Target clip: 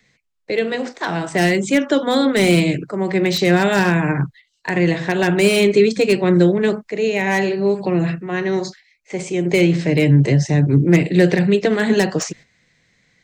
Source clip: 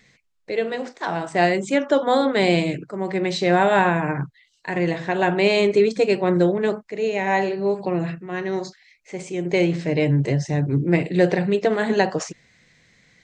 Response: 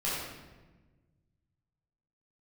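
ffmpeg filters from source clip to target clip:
-filter_complex "[0:a]agate=range=0.316:threshold=0.00562:ratio=16:detection=peak,acrossover=split=170|420|1400[s0][s1][s2][s3];[s2]acompressor=threshold=0.02:ratio=6[s4];[s3]aeval=exprs='0.0794*(abs(mod(val(0)/0.0794+3,4)-2)-1)':c=same[s5];[s0][s1][s4][s5]amix=inputs=4:normalize=0,volume=2.24"

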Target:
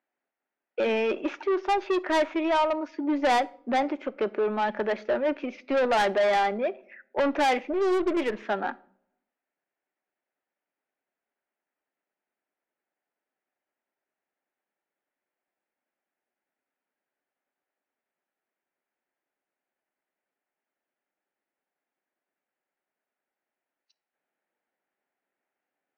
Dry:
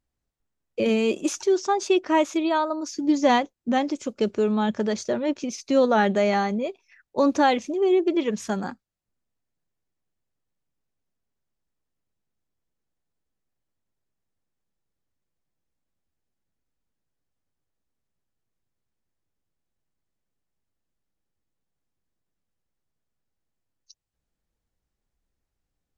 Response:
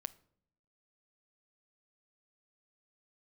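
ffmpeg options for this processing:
-filter_complex "[0:a]highpass=f=300:w=0.5412,highpass=f=300:w=1.3066,equalizer=f=310:t=q:w=4:g=-6,equalizer=f=460:t=q:w=4:g=-7,equalizer=f=1100:t=q:w=4:g=-7,lowpass=f=2300:w=0.5412,lowpass=f=2300:w=1.3066,asoftclip=type=tanh:threshold=0.0447,asplit=2[s0][s1];[1:a]atrim=start_sample=2205,lowshelf=f=280:g=-6[s2];[s1][s2]afir=irnorm=-1:irlink=0,volume=3.98[s3];[s0][s3]amix=inputs=2:normalize=0,asplit=3[s4][s5][s6];[s4]afade=t=out:st=7.72:d=0.02[s7];[s5]aeval=exprs='0.178*(cos(1*acos(clip(val(0)/0.178,-1,1)))-cos(1*PI/2))+0.0112*(cos(8*acos(clip(val(0)/0.178,-1,1)))-cos(8*PI/2))':c=same,afade=t=in:st=7.72:d=0.02,afade=t=out:st=8.42:d=0.02[s8];[s6]afade=t=in:st=8.42:d=0.02[s9];[s7][s8][s9]amix=inputs=3:normalize=0,volume=0.668"

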